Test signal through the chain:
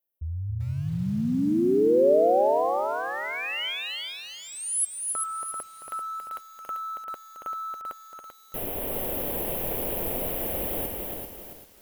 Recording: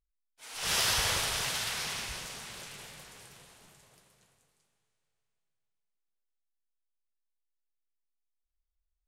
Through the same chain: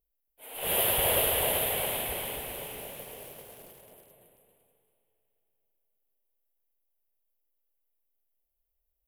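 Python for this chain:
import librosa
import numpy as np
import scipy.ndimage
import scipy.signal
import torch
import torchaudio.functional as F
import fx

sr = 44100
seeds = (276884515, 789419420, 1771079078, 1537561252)

p1 = fx.curve_eq(x, sr, hz=(150.0, 250.0, 580.0, 1300.0, 3100.0, 5700.0, 12000.0), db=(0, 5, 12, -7, 0, -27, 14))
p2 = p1 + fx.echo_single(p1, sr, ms=279, db=-5.5, dry=0)
y = fx.echo_crushed(p2, sr, ms=390, feedback_pct=35, bits=8, wet_db=-5.0)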